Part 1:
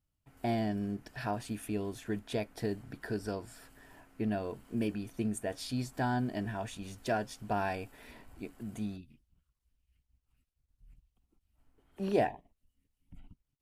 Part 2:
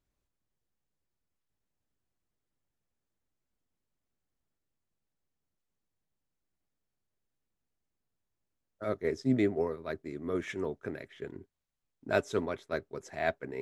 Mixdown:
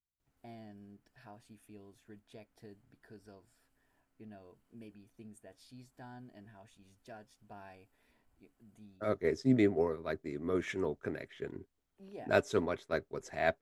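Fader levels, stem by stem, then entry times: −19.0, 0.0 decibels; 0.00, 0.20 seconds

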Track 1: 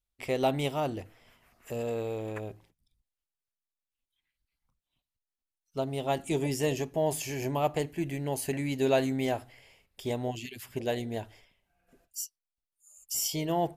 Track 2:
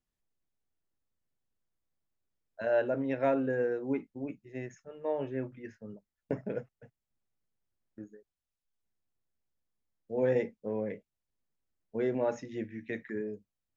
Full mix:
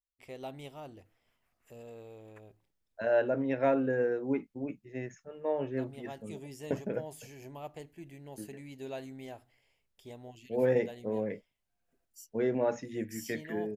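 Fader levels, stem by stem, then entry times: −15.5, +1.0 decibels; 0.00, 0.40 seconds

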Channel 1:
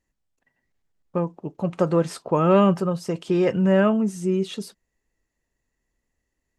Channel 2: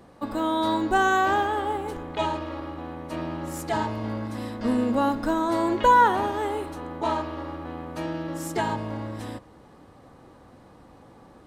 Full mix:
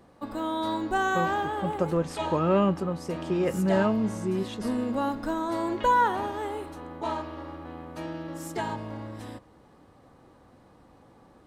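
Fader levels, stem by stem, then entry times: −6.0, −5.0 decibels; 0.00, 0.00 seconds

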